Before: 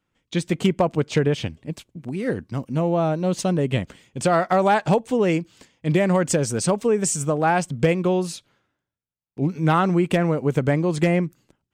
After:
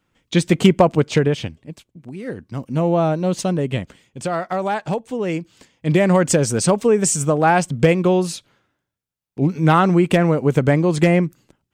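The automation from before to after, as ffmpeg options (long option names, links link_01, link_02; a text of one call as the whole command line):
ffmpeg -i in.wav -af "volume=24dB,afade=type=out:start_time=0.75:duration=0.96:silence=0.266073,afade=type=in:start_time=2.37:duration=0.53:silence=0.375837,afade=type=out:start_time=2.9:duration=1.33:silence=0.398107,afade=type=in:start_time=5.19:duration=0.94:silence=0.375837" out.wav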